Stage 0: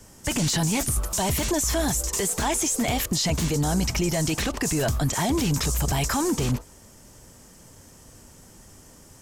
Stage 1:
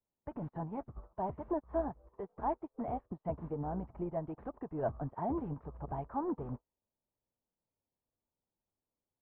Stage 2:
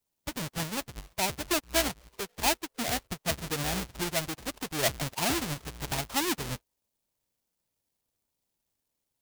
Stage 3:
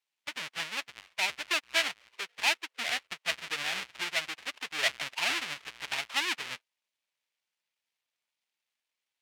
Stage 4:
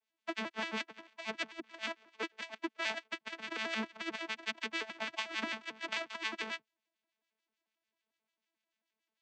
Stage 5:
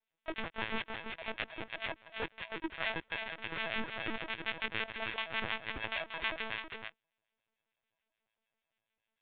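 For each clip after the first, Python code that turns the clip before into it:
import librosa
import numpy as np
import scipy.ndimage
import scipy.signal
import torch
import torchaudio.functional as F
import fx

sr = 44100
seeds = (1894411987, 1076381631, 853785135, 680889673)

y1 = scipy.signal.sosfilt(scipy.signal.butter(4, 1000.0, 'lowpass', fs=sr, output='sos'), x)
y1 = fx.low_shelf(y1, sr, hz=400.0, db=-10.5)
y1 = fx.upward_expand(y1, sr, threshold_db=-50.0, expansion=2.5)
y1 = F.gain(torch.from_numpy(y1), -1.5).numpy()
y2 = fx.halfwave_hold(y1, sr)
y2 = fx.high_shelf(y2, sr, hz=2000.0, db=12.0)
y3 = fx.bandpass_q(y2, sr, hz=2400.0, q=1.4)
y3 = F.gain(torch.from_numpy(y3), 6.0).numpy()
y4 = fx.vocoder_arp(y3, sr, chord='bare fifth', root=57, every_ms=89)
y4 = fx.over_compress(y4, sr, threshold_db=-35.0, ratio=-0.5)
y4 = fx.harmonic_tremolo(y4, sr, hz=6.8, depth_pct=70, crossover_hz=1400.0)
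y4 = F.gain(torch.from_numpy(y4), 1.0).numpy()
y5 = y4 + 10.0 ** (-5.0 / 20.0) * np.pad(y4, (int(325 * sr / 1000.0), 0))[:len(y4)]
y5 = fx.lpc_vocoder(y5, sr, seeds[0], excitation='pitch_kept', order=16)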